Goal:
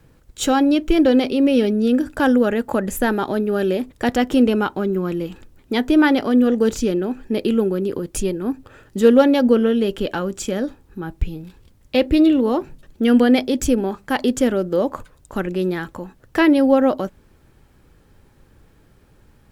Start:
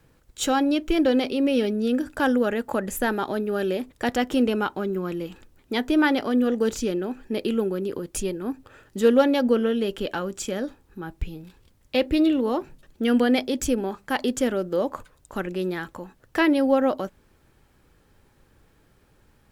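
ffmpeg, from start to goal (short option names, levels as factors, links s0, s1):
-af "lowshelf=f=400:g=5,volume=1.41"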